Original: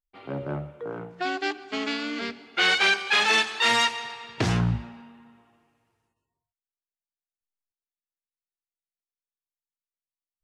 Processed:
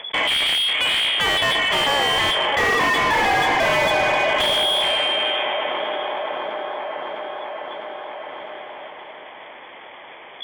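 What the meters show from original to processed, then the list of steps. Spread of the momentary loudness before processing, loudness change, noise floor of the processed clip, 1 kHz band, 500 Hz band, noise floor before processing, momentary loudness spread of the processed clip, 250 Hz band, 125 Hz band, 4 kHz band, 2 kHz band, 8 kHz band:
16 LU, +5.5 dB, -41 dBFS, +10.0 dB, +12.0 dB, under -85 dBFS, 17 LU, 0.0 dB, -6.5 dB, +10.0 dB, +6.0 dB, +4.0 dB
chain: minimum comb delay 0.74 ms; inverted band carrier 3400 Hz; overdrive pedal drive 37 dB, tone 1200 Hz, clips at -10 dBFS; on a send: band-limited delay 0.654 s, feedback 40%, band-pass 600 Hz, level -6 dB; on the sum: fast leveller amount 70%

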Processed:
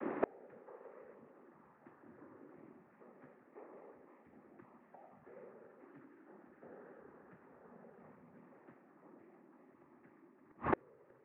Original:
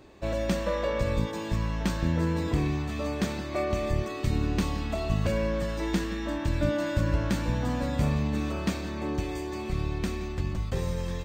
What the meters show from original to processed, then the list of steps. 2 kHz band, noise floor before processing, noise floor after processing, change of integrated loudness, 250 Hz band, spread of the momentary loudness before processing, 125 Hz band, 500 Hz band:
-18.0 dB, -35 dBFS, -67 dBFS, -18.5 dB, -21.0 dB, 5 LU, -32.0 dB, -17.0 dB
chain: noise vocoder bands 12; mistuned SSB -56 Hz 290–2000 Hz; flipped gate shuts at -33 dBFS, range -41 dB; gain +15.5 dB

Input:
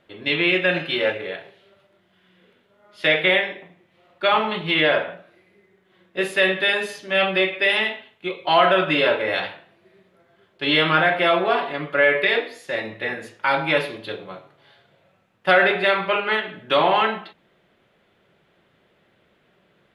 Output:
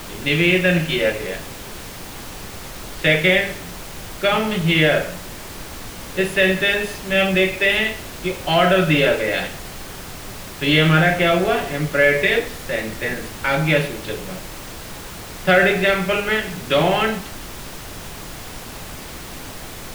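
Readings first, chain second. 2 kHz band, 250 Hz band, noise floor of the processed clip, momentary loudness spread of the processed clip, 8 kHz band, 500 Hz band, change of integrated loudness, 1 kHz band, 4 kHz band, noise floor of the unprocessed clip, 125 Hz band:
+1.5 dB, +7.0 dB, -35 dBFS, 18 LU, n/a, +2.5 dB, +2.0 dB, -2.0 dB, +1.0 dB, -63 dBFS, +12.5 dB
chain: fifteen-band EQ 160 Hz +10 dB, 1000 Hz -11 dB, 4000 Hz -4 dB; added noise pink -37 dBFS; gain +3.5 dB

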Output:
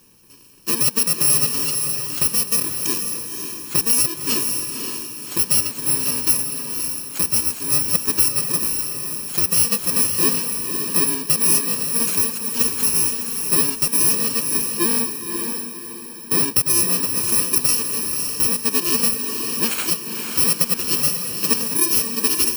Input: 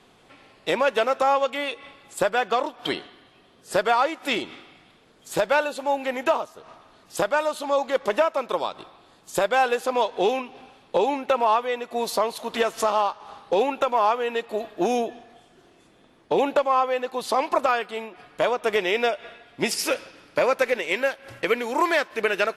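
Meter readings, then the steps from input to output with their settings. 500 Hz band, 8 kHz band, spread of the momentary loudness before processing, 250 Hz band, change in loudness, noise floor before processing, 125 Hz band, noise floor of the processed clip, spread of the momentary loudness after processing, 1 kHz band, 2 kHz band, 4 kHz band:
-10.0 dB, +22.0 dB, 10 LU, +4.0 dB, +7.0 dB, -57 dBFS, +13.0 dB, -34 dBFS, 8 LU, -11.0 dB, -3.5 dB, +8.0 dB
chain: FFT order left unsorted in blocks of 64 samples; diffused feedback echo 0.541 s, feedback 40%, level -5 dB; gain +3 dB

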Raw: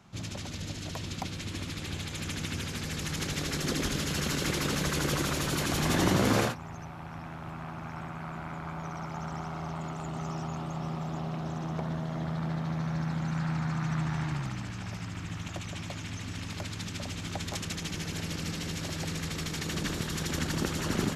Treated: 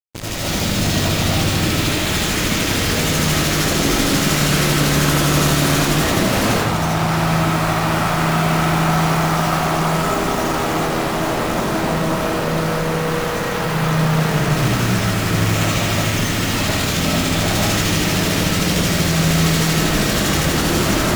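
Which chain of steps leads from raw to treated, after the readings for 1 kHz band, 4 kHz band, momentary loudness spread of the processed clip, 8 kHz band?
+17.5 dB, +16.5 dB, 4 LU, +16.0 dB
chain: AGC gain up to 15 dB; fuzz box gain 42 dB, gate -34 dBFS; added harmonics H 3 -9 dB, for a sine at -10 dBFS; digital reverb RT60 1.2 s, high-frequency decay 0.45×, pre-delay 40 ms, DRR -7.5 dB; gain -5.5 dB

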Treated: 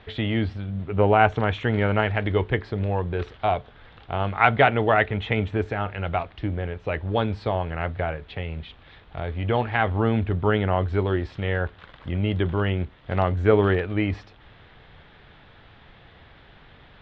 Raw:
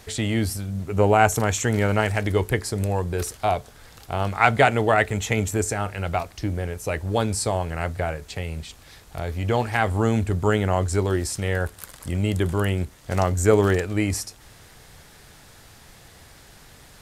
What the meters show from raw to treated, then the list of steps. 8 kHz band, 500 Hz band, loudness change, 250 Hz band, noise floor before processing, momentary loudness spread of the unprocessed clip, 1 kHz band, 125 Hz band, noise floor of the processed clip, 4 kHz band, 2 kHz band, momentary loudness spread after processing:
under -35 dB, -0.5 dB, -1.0 dB, -1.0 dB, -49 dBFS, 12 LU, -0.5 dB, -1.0 dB, -51 dBFS, -2.0 dB, -0.5 dB, 12 LU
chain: elliptic low-pass 3500 Hz, stop band 80 dB

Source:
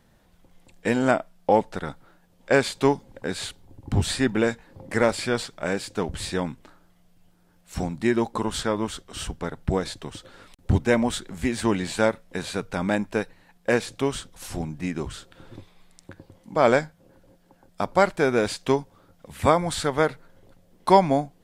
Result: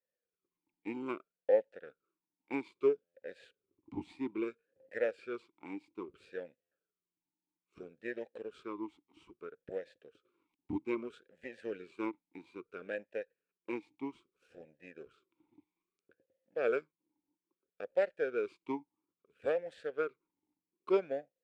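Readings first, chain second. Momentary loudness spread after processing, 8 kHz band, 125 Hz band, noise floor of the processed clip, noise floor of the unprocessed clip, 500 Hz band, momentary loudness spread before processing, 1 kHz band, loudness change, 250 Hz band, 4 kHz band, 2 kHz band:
20 LU, under -35 dB, -29.5 dB, under -85 dBFS, -60 dBFS, -11.5 dB, 13 LU, -22.0 dB, -13.0 dB, -16.0 dB, -27.0 dB, -16.5 dB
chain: power-law curve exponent 1.4; stuck buffer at 3.04/6.61, samples 512, times 8; vowel sweep e-u 0.61 Hz

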